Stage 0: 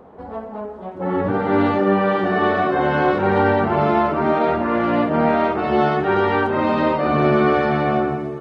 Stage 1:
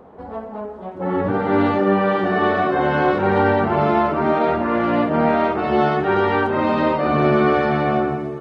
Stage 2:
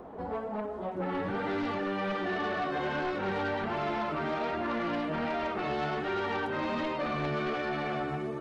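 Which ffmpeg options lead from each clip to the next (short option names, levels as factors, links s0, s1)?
-af anull
-filter_complex "[0:a]acrossover=split=1700|3400[s0][s1][s2];[s0]acompressor=threshold=0.0316:ratio=4[s3];[s1]acompressor=threshold=0.0112:ratio=4[s4];[s2]acompressor=threshold=0.00316:ratio=4[s5];[s3][s4][s5]amix=inputs=3:normalize=0,flanger=delay=2.8:depth=4.3:regen=54:speed=1.3:shape=sinusoidal,aeval=exprs='0.106*sin(PI/2*2.24*val(0)/0.106)':c=same,volume=0.422"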